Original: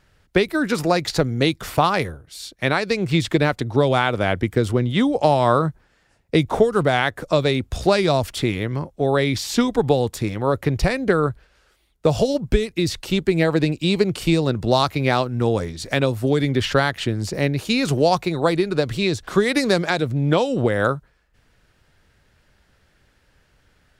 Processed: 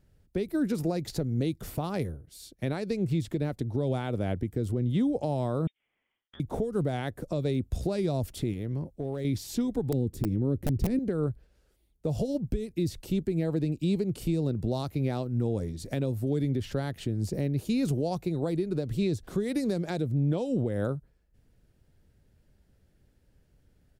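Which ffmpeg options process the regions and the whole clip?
-filter_complex "[0:a]asettb=1/sr,asplit=3[a][b][c];[a]atrim=end=5.674[d];[b]atrim=start=5.67:end=6.4,asetpts=PTS-STARTPTS,afade=t=in:d=0.004:c=qsin,afade=t=out:st=0.726:d=0.004:c=qsin,highpass=700,lowpass=f=3.2k:t=q:w=0.5098,lowpass=f=3.2k:t=q:w=0.6013,lowpass=f=3.2k:t=q:w=0.9,lowpass=f=3.2k:t=q:w=2.563,afreqshift=-3800,acompressor=threshold=-34dB:ratio=5:attack=3.2:release=140:knee=1:detection=peak[e];[c]atrim=start=6.396[f];[d][e]acrossfade=d=0.004:c1=hsin:c2=qsin[g];[g][f]acrossfade=d=0.004:c1=qsin:c2=hsin,asettb=1/sr,asplit=3[h][i][j];[h]atrim=end=8.534[k];[i]atrim=start=8.53:end=9.25,asetpts=PTS-STARTPTS,afade=t=in:d=0.004:c=qsin,afade=t=out:st=0.716:d=0.004:c=qsin,acompressor=threshold=-25dB:ratio=3:attack=3.2:release=140:knee=1:detection=peak,asoftclip=type=hard:threshold=-19.5dB[l];[j]atrim=start=9.246[m];[k][l]acrossfade=d=0.004:c1=hsin:c2=qsin[n];[n][m]acrossfade=d=0.004:c1=qsin:c2=hsin,asettb=1/sr,asplit=3[o][p][q];[o]atrim=end=9.924[r];[p]atrim=start=9.92:end=10.99,asetpts=PTS-STARTPTS,afade=t=in:d=0.004:c=qsin,afade=t=out:st=1.066:d=0.004:c=qsin,lowshelf=f=460:t=q:w=1.5:g=10.5,aeval=exprs='(mod(1.12*val(0)+1,2)-1)/1.12':c=same[s];[q]atrim=start=10.986[t];[r][s]acrossfade=d=0.004:c1=hsin:c2=qsin[u];[u][t]acrossfade=d=0.004:c1=qsin:c2=hsin,firequalizer=gain_entry='entry(220,0);entry(1100,-16);entry(12000,-3)':delay=0.05:min_phase=1,alimiter=limit=-17dB:level=0:latency=1:release=202,volume=-2.5dB"

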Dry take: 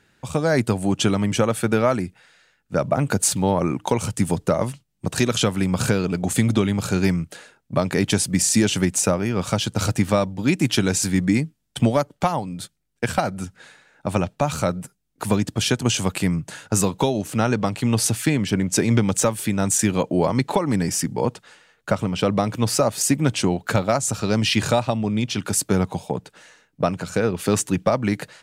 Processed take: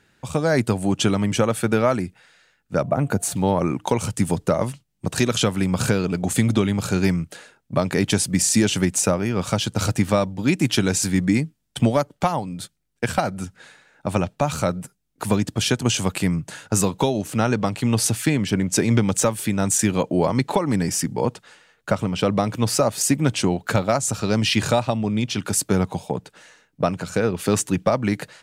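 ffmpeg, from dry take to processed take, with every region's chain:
-filter_complex "[0:a]asettb=1/sr,asplit=3[a][b][c];[a]atrim=end=2.824[d];[b]atrim=start=2.82:end=3.35,asetpts=PTS-STARTPTS,afade=t=in:d=0.004:c=qsin,afade=t=out:st=0.526:d=0.004:c=qsin,equalizer=f=5k:w=0.4:g=-7.5,aeval=exprs='val(0)+0.00355*sin(2*PI*700*n/s)':c=same,bandreject=f=5k:w=15[e];[c]atrim=start=3.346[f];[d][e]acrossfade=d=0.004:c1=hsin:c2=qsin[g];[g][f]acrossfade=d=0.004:c1=qsin:c2=hsin"

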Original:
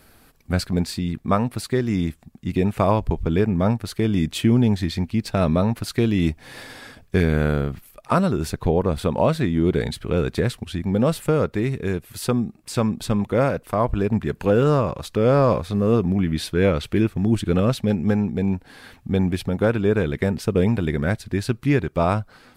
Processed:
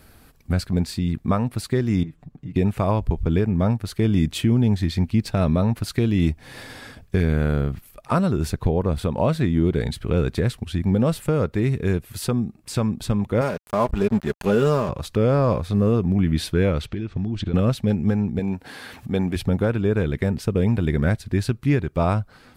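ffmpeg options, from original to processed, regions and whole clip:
-filter_complex "[0:a]asettb=1/sr,asplit=3[a][b][c];[a]atrim=end=2.034[d];[b]atrim=start=2.03:end=2.56,asetpts=PTS-STARTPTS,afade=t=in:d=0.004:c=qsin,afade=t=out:st=0.526:d=0.004:c=qsin,lowpass=f=1.5k:p=1,acompressor=threshold=-39dB:ratio=3:attack=3.2:release=140:knee=1:detection=peak,aecho=1:1:6.8:0.85,atrim=end_sample=23373[e];[c]atrim=start=2.556[f];[d][e]acrossfade=d=0.004:c1=hsin:c2=qsin[g];[g][f]acrossfade=d=0.004:c1=qsin:c2=hsin,asettb=1/sr,asplit=3[h][i][j];[h]atrim=end=13.414[k];[i]atrim=start=13.41:end=14.89,asetpts=PTS-STARTPTS,afade=t=in:d=0.004:c=qsin,afade=t=out:st=1.476:d=0.004:c=qsin,bass=f=250:g=-4,treble=f=4k:g=5,aecho=1:1:4.9:0.51,atrim=end_sample=65268,aeval=exprs='sgn(val(0))*max(abs(val(0))-0.0178,0)':c=same[l];[j]atrim=start=14.886[m];[k][l]acrossfade=d=0.004:c1=hsin:c2=qsin[n];[n][m]acrossfade=d=0.004:c1=qsin:c2=hsin,asettb=1/sr,asplit=3[o][p][q];[o]atrim=end=16.864[r];[p]atrim=start=16.86:end=17.54,asetpts=PTS-STARTPTS,afade=t=in:d=0.004:c=qsin,afade=t=out:st=0.676:d=0.004:c=qsin,lowpass=f=6.2k:w=0.5412,lowpass=f=6.2k:w=1.3066,equalizer=f=3.6k:t=o:w=0.76:g=3,acompressor=threshold=-24dB:ratio=16:attack=3.2:release=140:knee=1:detection=peak[s];[q]atrim=start=17.536[t];[r][s]acrossfade=d=0.004:c1=hsin:c2=qsin[u];[u][t]acrossfade=d=0.004:c1=qsin:c2=hsin,asettb=1/sr,asplit=3[v][w][x];[v]atrim=end=18.394[y];[w]atrim=start=18.39:end=19.36,asetpts=PTS-STARTPTS,afade=t=in:d=0.004:c=qsin,afade=t=out:st=0.966:d=0.004:c=qsin,highpass=f=290:p=1,acompressor=mode=upward:threshold=-30dB:ratio=2.5:attack=3.2:release=140:knee=2.83:detection=peak[z];[x]atrim=start=19.356[aa];[y][z]acrossfade=d=0.004:c1=hsin:c2=qsin[ab];[ab][aa]acrossfade=d=0.004:c1=qsin:c2=hsin,equalizer=f=63:t=o:w=3:g=6,alimiter=limit=-9dB:level=0:latency=1:release=493"

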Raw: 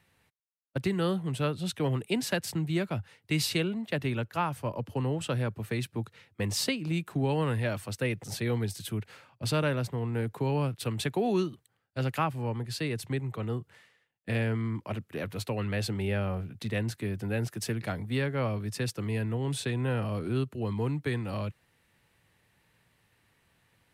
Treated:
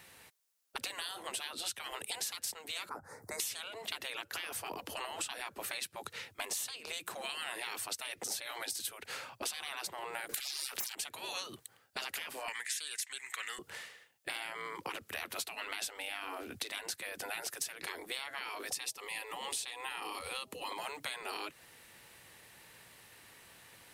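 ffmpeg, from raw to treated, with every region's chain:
-filter_complex "[0:a]asettb=1/sr,asplit=3[a][b][c];[a]atrim=end=2.894[d];[b]atrim=start=2.89:end=3.4,asetpts=PTS-STARTPTS,afade=t=in:d=0.004:c=qsin,afade=t=out:st=0.506:d=0.004:c=qsin,highshelf=f=3k:g=-11,acompressor=mode=upward:threshold=-46dB:ratio=2.5:attack=3.2:release=140:knee=2.83:detection=peak,asuperstop=centerf=3000:order=4:qfactor=0.63[e];[c]atrim=start=3.396[f];[d][e]acrossfade=d=0.004:c1=hsin:c2=qsin[g];[g][f]acrossfade=d=0.004:c1=qsin:c2=hsin,asettb=1/sr,asplit=3[h][i][j];[h]atrim=end=10.294[k];[i]atrim=start=10.29:end=10.95,asetpts=PTS-STARTPTS,afade=t=in:d=0.004:c=qsin,afade=t=out:st=0.656:d=0.004:c=qsin,acontrast=85,aeval=exprs='0.266*sin(PI/2*3.16*val(0)/0.266)':c=same[l];[j]atrim=start=10.946[m];[k][l]acrossfade=d=0.004:c1=hsin:c2=qsin[n];[n][m]acrossfade=d=0.004:c1=qsin:c2=hsin,asettb=1/sr,asplit=3[o][p][q];[o]atrim=end=12.484[r];[p]atrim=start=12.48:end=13.59,asetpts=PTS-STARTPTS,afade=t=in:d=0.004:c=qsin,afade=t=out:st=1.106:d=0.004:c=qsin,highpass=f=1.9k:t=q:w=5.7,equalizer=f=7.6k:w=1.6:g=14[s];[q]atrim=start=13.586[t];[r][s]acrossfade=d=0.004:c1=hsin:c2=qsin[u];[u][t]acrossfade=d=0.004:c1=qsin:c2=hsin,asettb=1/sr,asplit=3[v][w][x];[v]atrim=end=18.714[y];[w]atrim=start=18.71:end=20.72,asetpts=PTS-STARTPTS,afade=t=in:d=0.004:c=qsin,afade=t=out:st=2.006:d=0.004:c=qsin,aeval=exprs='val(0)+0.0251*sin(2*PI*640*n/s)':c=same,equalizer=f=1.5k:t=o:w=0.21:g=-15[z];[x]atrim=start=20.716[aa];[y][z]acrossfade=d=0.004:c1=hsin:c2=qsin[ab];[ab][aa]acrossfade=d=0.004:c1=qsin:c2=hsin,afftfilt=real='re*lt(hypot(re,im),0.0398)':imag='im*lt(hypot(re,im),0.0398)':win_size=1024:overlap=0.75,bass=f=250:g=-10,treble=f=4k:g=6,acompressor=threshold=-48dB:ratio=6,volume=11dB"

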